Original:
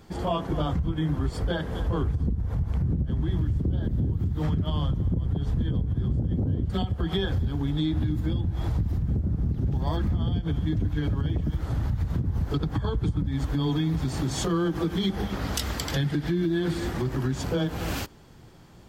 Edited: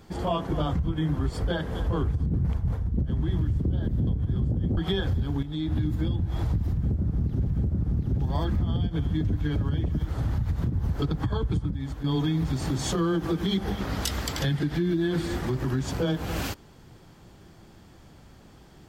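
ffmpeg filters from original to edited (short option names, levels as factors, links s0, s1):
-filter_complex "[0:a]asplit=8[s0][s1][s2][s3][s4][s5][s6][s7];[s0]atrim=end=2.262[s8];[s1]atrim=start=2.258:end=3.012,asetpts=PTS-STARTPTS,areverse[s9];[s2]atrim=start=3.008:end=4.072[s10];[s3]atrim=start=5.748:end=6.452[s11];[s4]atrim=start=7.018:end=7.68,asetpts=PTS-STARTPTS,afade=t=out:st=0.658:d=0.004:c=hsin:silence=0.251189[s12];[s5]atrim=start=7.68:end=9.722,asetpts=PTS-STARTPTS,afade=t=in:d=0.34:silence=0.251189[s13];[s6]atrim=start=8.988:end=13.56,asetpts=PTS-STARTPTS,afade=t=out:st=4.042:d=0.53:silence=0.316228[s14];[s7]atrim=start=13.56,asetpts=PTS-STARTPTS,afade=t=in:d=0.004:c=hsin:silence=0.316228[s15];[s8][s9]acrossfade=d=0.004:c1=hsin:c2=hsin[s16];[s16][s10]acrossfade=d=0.004:c1=hsin:c2=hsin[s17];[s17][s11]acrossfade=d=0.004:c1=hsin:c2=hsin[s18];[s12][s13]concat=n=2:v=0:a=1[s19];[s18][s19]acrossfade=d=0.004:c1=hsin:c2=hsin[s20];[s14][s15]concat=n=2:v=0:a=1[s21];[s20][s21]acrossfade=d=0.004:c1=hsin:c2=hsin"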